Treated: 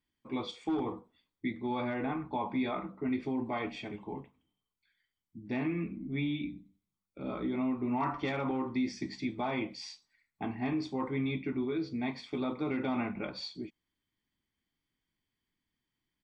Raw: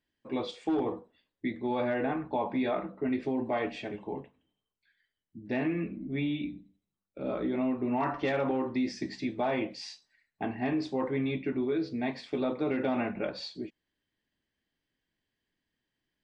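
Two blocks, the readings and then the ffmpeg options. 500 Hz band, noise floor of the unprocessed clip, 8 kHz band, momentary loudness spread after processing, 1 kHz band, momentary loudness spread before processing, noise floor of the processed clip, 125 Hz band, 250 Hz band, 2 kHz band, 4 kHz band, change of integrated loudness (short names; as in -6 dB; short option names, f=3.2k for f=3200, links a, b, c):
-6.0 dB, under -85 dBFS, n/a, 10 LU, -2.0 dB, 9 LU, under -85 dBFS, -0.5 dB, -2.0 dB, -2.5 dB, -1.0 dB, -3.0 dB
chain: -af "aecho=1:1:0.9:0.47,volume=-3dB"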